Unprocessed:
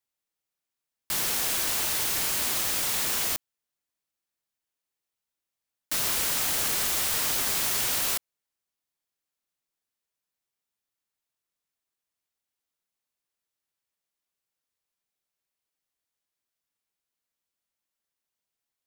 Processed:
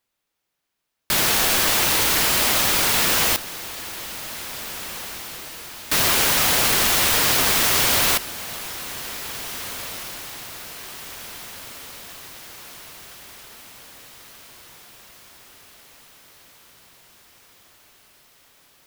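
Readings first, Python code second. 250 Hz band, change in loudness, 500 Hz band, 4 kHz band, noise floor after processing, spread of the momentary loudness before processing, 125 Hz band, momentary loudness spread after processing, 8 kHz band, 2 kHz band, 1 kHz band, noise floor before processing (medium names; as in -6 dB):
+12.5 dB, +6.0 dB, +12.5 dB, +10.0 dB, -79 dBFS, 4 LU, +12.5 dB, 20 LU, +7.0 dB, +12.0 dB, +12.5 dB, under -85 dBFS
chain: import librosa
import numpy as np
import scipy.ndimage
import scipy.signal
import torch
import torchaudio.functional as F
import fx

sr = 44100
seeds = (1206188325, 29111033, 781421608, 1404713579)

p1 = fx.sample_hold(x, sr, seeds[0], rate_hz=12000.0, jitter_pct=0)
p2 = x + (p1 * 10.0 ** (-5.0 / 20.0))
p3 = fx.echo_diffused(p2, sr, ms=1914, feedback_pct=56, wet_db=-14.0)
y = p3 * 10.0 ** (7.0 / 20.0)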